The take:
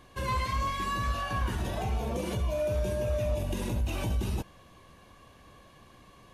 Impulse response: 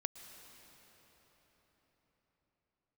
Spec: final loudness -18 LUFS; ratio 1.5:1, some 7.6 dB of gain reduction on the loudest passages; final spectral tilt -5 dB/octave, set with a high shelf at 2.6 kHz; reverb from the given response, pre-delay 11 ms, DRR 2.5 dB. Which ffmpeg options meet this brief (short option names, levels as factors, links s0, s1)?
-filter_complex "[0:a]highshelf=f=2600:g=7,acompressor=threshold=0.00447:ratio=1.5,asplit=2[s0][s1];[1:a]atrim=start_sample=2205,adelay=11[s2];[s1][s2]afir=irnorm=-1:irlink=0,volume=0.841[s3];[s0][s3]amix=inputs=2:normalize=0,volume=8.91"